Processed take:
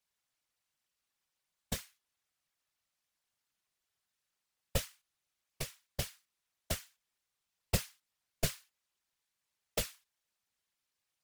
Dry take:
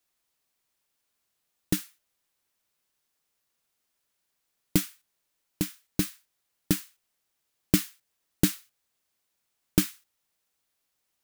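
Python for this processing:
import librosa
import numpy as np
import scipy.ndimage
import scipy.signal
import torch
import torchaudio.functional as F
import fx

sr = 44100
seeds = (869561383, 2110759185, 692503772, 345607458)

y = fx.weighting(x, sr, curve='A')
y = y * np.sin(2.0 * np.pi * 280.0 * np.arange(len(y)) / sr)
y = fx.peak_eq(y, sr, hz=73.0, db=13.5, octaves=1.4)
y = fx.whisperise(y, sr, seeds[0])
y = F.gain(torch.from_numpy(y), -3.0).numpy()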